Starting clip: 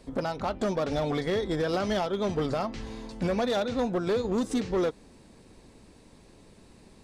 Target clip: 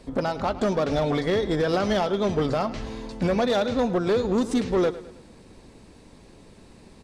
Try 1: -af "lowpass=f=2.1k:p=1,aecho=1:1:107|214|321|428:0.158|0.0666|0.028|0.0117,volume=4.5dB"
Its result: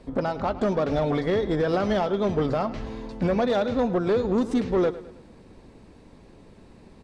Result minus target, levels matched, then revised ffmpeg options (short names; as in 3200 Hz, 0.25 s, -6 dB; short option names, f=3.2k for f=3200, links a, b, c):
8000 Hz band -8.0 dB
-af "lowpass=f=8.4k:p=1,aecho=1:1:107|214|321|428:0.158|0.0666|0.028|0.0117,volume=4.5dB"